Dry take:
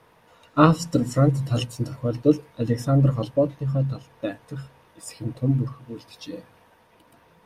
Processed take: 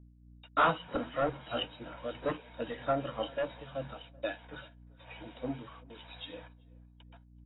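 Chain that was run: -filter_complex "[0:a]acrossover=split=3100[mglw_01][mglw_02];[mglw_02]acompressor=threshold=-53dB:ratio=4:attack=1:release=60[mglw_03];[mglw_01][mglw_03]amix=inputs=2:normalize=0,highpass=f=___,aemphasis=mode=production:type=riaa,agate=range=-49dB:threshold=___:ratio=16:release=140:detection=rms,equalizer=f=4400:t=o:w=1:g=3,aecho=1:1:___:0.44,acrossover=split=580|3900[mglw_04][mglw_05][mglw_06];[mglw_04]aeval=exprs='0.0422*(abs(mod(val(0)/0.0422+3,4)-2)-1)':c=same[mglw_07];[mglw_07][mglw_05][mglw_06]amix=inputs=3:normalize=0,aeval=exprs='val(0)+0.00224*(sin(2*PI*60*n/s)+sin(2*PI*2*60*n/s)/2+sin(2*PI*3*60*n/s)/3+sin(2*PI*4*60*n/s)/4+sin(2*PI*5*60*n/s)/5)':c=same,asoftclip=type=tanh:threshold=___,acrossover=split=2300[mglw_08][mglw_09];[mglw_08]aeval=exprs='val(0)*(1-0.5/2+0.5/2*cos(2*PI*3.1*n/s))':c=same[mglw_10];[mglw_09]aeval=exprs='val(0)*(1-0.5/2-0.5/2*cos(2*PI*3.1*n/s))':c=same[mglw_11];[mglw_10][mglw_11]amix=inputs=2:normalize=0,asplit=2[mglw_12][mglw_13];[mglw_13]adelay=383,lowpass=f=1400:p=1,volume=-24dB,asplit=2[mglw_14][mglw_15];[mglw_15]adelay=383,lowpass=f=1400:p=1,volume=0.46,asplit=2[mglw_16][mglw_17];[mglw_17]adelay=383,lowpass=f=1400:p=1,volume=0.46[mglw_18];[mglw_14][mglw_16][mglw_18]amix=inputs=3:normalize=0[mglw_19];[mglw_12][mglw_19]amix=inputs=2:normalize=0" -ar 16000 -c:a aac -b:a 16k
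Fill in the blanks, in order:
300, -47dB, 1.3, -18.5dB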